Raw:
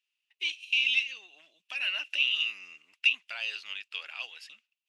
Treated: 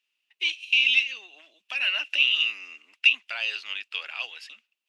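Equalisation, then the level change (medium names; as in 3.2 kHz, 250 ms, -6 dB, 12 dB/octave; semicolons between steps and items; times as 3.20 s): steep high-pass 210 Hz 48 dB/octave; treble shelf 6.1 kHz -6.5 dB; +6.5 dB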